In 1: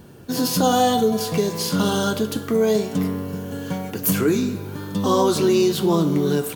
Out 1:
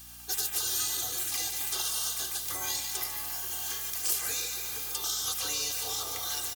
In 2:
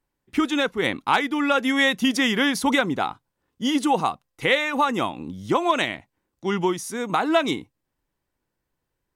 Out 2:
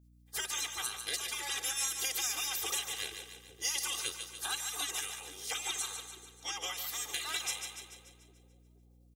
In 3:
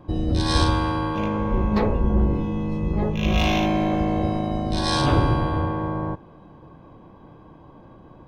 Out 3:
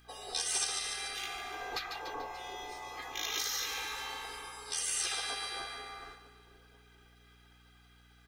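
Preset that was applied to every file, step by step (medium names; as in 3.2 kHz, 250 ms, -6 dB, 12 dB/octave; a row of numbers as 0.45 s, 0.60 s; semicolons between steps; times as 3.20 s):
high-pass 52 Hz; treble shelf 2.7 kHz +8.5 dB; spectral gate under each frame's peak -20 dB weak; comb 2.5 ms, depth 86%; on a send: two-band feedback delay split 490 Hz, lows 472 ms, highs 145 ms, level -9.5 dB; on the sum: compression 2.5:1, threshold -32 dBFS; tone controls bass -6 dB, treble +7 dB; hum 60 Hz, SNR 23 dB; trim -4.5 dB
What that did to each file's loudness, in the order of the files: -9.0 LU, -12.0 LU, -13.0 LU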